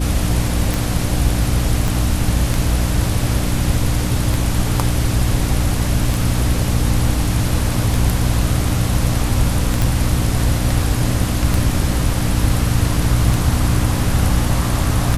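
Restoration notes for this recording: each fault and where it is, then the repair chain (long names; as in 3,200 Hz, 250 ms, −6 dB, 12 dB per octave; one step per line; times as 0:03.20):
mains hum 60 Hz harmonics 5 −21 dBFS
scratch tick 33 1/3 rpm
0:01.88: click
0:09.82: click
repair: click removal
hum removal 60 Hz, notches 5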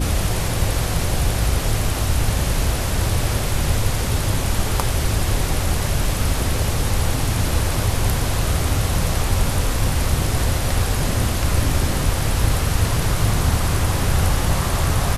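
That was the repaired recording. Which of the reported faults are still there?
0:01.88: click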